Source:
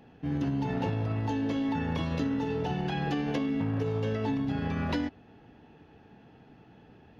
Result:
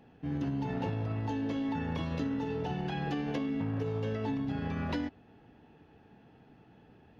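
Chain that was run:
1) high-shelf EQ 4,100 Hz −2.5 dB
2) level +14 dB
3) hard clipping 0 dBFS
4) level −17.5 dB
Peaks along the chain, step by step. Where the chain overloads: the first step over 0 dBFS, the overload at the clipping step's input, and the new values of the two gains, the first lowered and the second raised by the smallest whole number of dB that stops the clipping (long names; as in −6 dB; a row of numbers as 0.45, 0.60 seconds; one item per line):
−16.5, −2.5, −2.5, −20.0 dBFS
no step passes full scale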